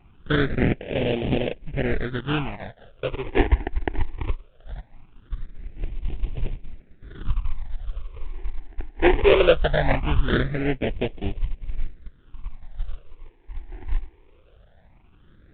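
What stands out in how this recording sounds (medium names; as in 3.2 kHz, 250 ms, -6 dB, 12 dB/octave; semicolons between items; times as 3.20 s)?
aliases and images of a low sample rate 1.1 kHz, jitter 20%; phasing stages 8, 0.2 Hz, lowest notch 160–1400 Hz; µ-law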